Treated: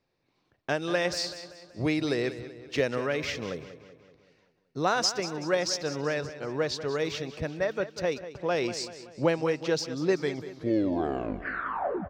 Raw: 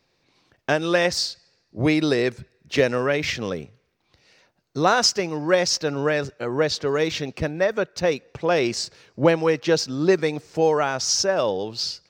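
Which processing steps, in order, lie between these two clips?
turntable brake at the end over 1.97 s
repeating echo 190 ms, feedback 54%, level −13 dB
one half of a high-frequency compander decoder only
level −7.5 dB

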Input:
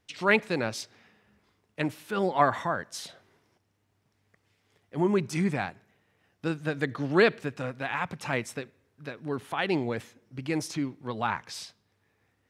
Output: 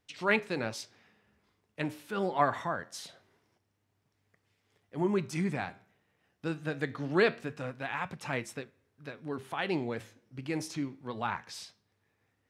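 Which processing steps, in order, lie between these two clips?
flanger 0.24 Hz, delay 6.7 ms, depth 8.6 ms, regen −81%

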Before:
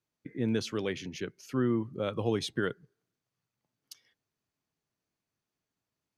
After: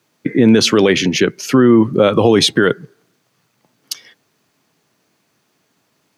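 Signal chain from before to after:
high-pass filter 160 Hz 12 dB per octave
high-shelf EQ 6,200 Hz −3.5 dB
boost into a limiter +27 dB
level −1 dB

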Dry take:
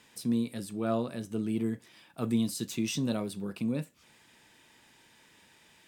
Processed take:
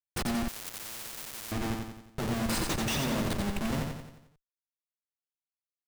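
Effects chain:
mains-hum notches 60/120/180/240/300/360/420/480 Hz
reverb reduction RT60 1.2 s
in parallel at +2.5 dB: downward compressor 5 to 1, threshold −47 dBFS, peak gain reduction 19.5 dB
on the sum: comparator with hysteresis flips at −35 dBFS
on a send: repeating echo 89 ms, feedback 50%, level −4 dB
0:00.48–0:01.52: on the sum: every bin compressed towards the loudest bin 10 to 1
level +3 dB

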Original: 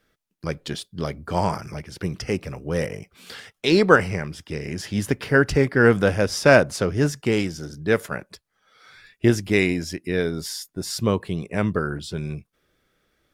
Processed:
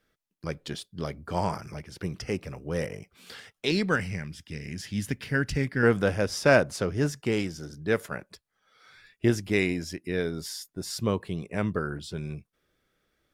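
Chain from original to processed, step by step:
0:03.71–0:05.83: flat-topped bell 670 Hz −8.5 dB 2.3 octaves
level −5.5 dB

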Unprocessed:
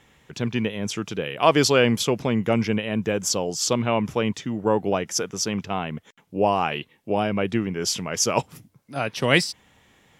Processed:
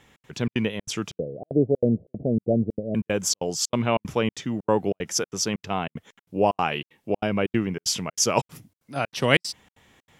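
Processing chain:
0:01.18–0:02.95: Butterworth low-pass 680 Hz 72 dB per octave
gate pattern "xx.xxx.x" 189 BPM −60 dB

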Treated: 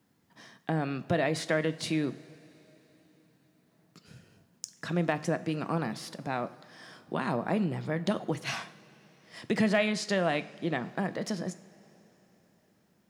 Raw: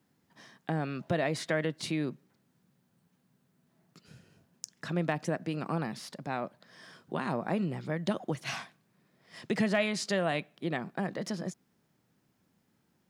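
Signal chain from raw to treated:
0:09.81–0:10.84: high-shelf EQ 6,700 Hz −5.5 dB
coupled-rooms reverb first 0.51 s, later 4.2 s, from −16 dB, DRR 12.5 dB
level +2 dB

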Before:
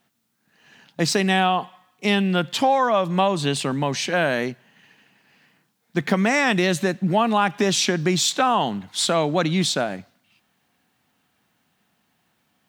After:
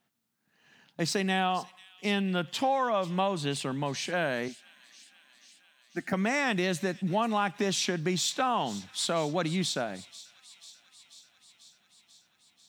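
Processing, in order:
0:04.48–0:06.13: phaser with its sweep stopped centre 680 Hz, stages 8
delay with a high-pass on its return 490 ms, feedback 72%, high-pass 3,300 Hz, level −15 dB
level −8.5 dB

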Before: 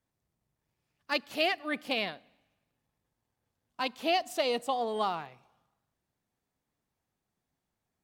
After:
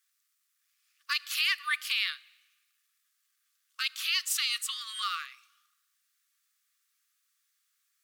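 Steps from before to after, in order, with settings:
high-shelf EQ 2,600 Hz +11.5 dB
brickwall limiter −20 dBFS, peak gain reduction 9.5 dB
linear-phase brick-wall high-pass 1,100 Hz
level +4 dB

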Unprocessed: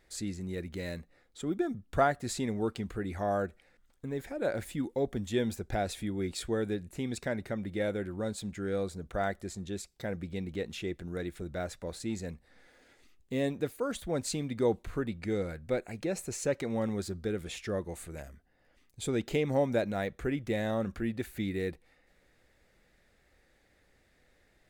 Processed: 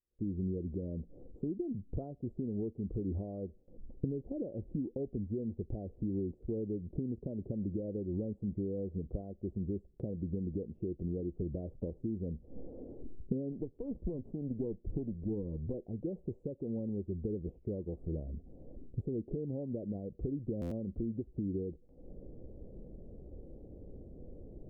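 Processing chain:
0:13.52–0:15.74: lower of the sound and its delayed copy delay 0.51 ms
camcorder AGC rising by 66 dB per second
inverse Chebyshev low-pass filter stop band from 1,600 Hz, stop band 60 dB
noise gate with hold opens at −43 dBFS
buffer that repeats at 0:20.61, samples 512, times 8
level −9 dB

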